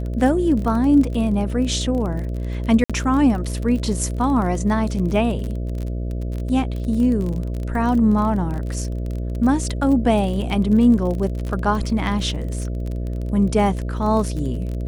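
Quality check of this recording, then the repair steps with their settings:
mains buzz 60 Hz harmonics 11 −25 dBFS
surface crackle 29 per second −26 dBFS
0:02.84–0:02.90: drop-out 56 ms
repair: click removal
hum removal 60 Hz, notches 11
repair the gap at 0:02.84, 56 ms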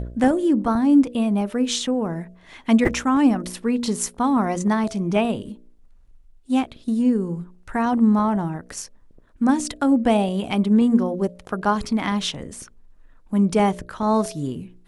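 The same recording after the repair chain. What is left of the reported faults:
none of them is left

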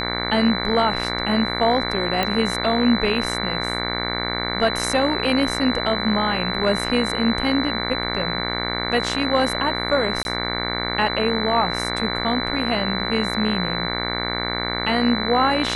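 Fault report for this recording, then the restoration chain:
mains buzz 60 Hz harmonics 38 −27 dBFS
whistle 4,000 Hz −27 dBFS
0:02.23: click −8 dBFS
0:10.23–0:10.25: drop-out 21 ms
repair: click removal
notch filter 4,000 Hz, Q 30
hum removal 60 Hz, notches 38
repair the gap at 0:10.23, 21 ms

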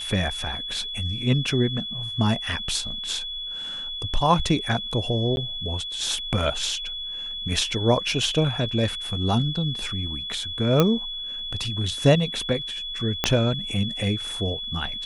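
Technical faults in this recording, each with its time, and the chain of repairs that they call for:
whistle 3,400 Hz −30 dBFS
0:05.36–0:05.37: drop-out 11 ms
0:10.80: click −5 dBFS
0:13.24: click −5 dBFS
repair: click removal
notch filter 3,400 Hz, Q 30
repair the gap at 0:05.36, 11 ms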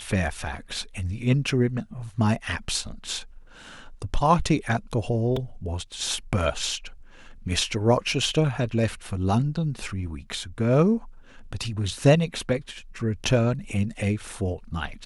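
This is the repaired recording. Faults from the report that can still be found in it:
0:13.24: click

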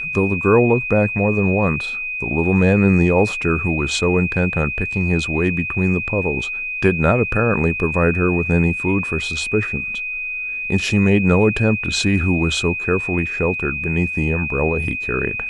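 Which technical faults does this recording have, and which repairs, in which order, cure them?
whistle 2,500 Hz −23 dBFS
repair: notch filter 2,500 Hz, Q 30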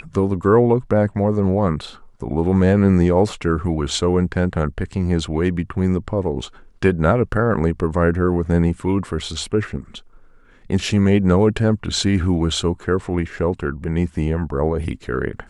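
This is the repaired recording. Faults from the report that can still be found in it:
none of them is left

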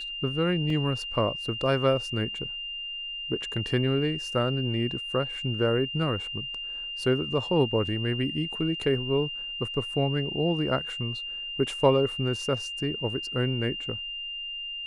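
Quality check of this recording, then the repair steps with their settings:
whistle 2,800 Hz −33 dBFS
0:00.70: drop-out 2.7 ms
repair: notch filter 2,800 Hz, Q 30
repair the gap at 0:00.70, 2.7 ms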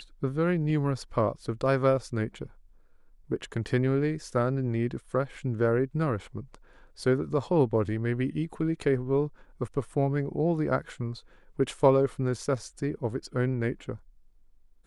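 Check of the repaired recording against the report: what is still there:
none of them is left

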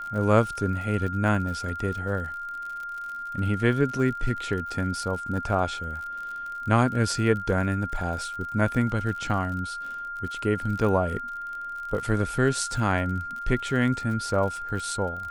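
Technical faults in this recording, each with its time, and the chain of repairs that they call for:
surface crackle 52 per second −34 dBFS
whistle 1,400 Hz −32 dBFS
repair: click removal
notch filter 1,400 Hz, Q 30

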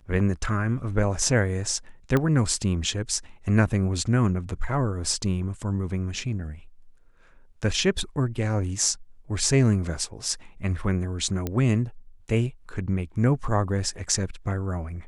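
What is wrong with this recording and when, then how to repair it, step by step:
0:02.17: click −11 dBFS
0:11.47: click −14 dBFS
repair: click removal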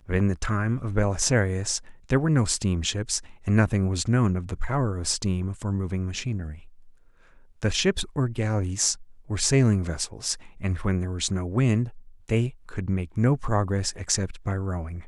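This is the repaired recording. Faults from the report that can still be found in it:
none of them is left

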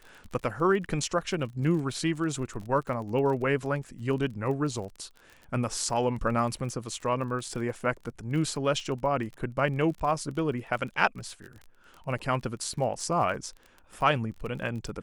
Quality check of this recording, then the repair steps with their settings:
surface crackle 31 per second −37 dBFS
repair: click removal

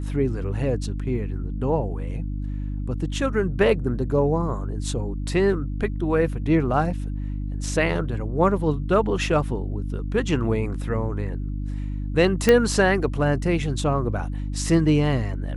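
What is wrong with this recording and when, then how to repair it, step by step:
mains hum 50 Hz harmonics 6 −28 dBFS
0:12.49: click −4 dBFS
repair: click removal
hum removal 50 Hz, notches 6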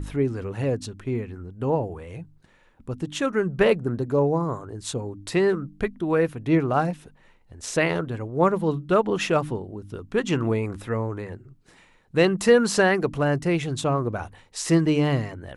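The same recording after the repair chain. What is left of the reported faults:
none of them is left

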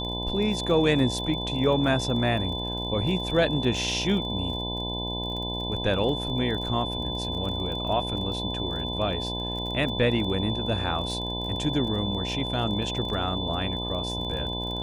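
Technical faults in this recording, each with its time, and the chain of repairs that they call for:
mains buzz 60 Hz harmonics 17 −33 dBFS
surface crackle 29 per second −34 dBFS
whistle 3,500 Hz −32 dBFS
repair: click removal
hum removal 60 Hz, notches 17
notch filter 3,500 Hz, Q 30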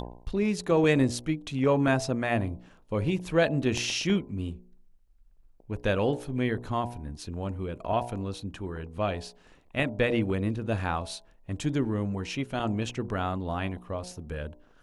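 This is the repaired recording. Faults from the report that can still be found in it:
none of them is left

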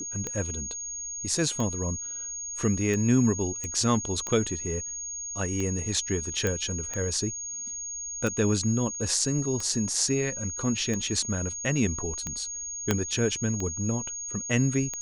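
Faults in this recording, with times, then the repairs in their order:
scratch tick 45 rpm −18 dBFS
whistle 6,600 Hz −33 dBFS
0:03.64: click −19 dBFS
0:06.47: click −14 dBFS
0:12.91: click −8 dBFS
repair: click removal
notch filter 6,600 Hz, Q 30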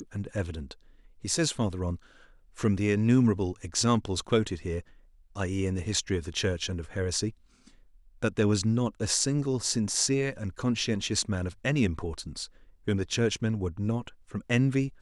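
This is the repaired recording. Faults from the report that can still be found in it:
0:06.47: click
0:12.91: click

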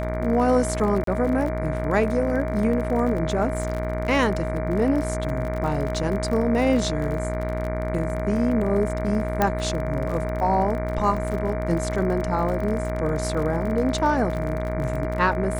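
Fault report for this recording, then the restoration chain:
mains buzz 60 Hz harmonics 39 −28 dBFS
surface crackle 36 per second −29 dBFS
whistle 630 Hz −29 dBFS
0:01.04–0:01.07: drop-out 33 ms
0:09.42: click −7 dBFS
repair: click removal
notch filter 630 Hz, Q 30
hum removal 60 Hz, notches 39
repair the gap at 0:01.04, 33 ms

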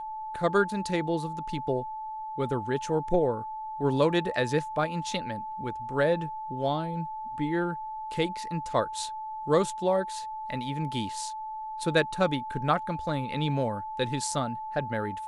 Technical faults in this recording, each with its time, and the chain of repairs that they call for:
whistle 870 Hz −34 dBFS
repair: notch filter 870 Hz, Q 30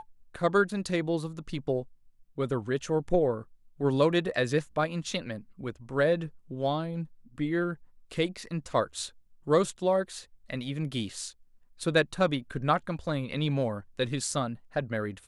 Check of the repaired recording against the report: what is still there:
none of them is left

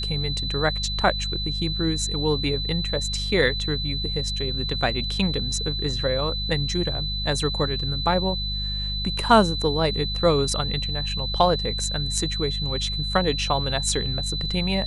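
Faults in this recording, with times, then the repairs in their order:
mains hum 50 Hz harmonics 4 −30 dBFS
whistle 4,000 Hz −28 dBFS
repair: hum removal 50 Hz, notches 4
notch filter 4,000 Hz, Q 30

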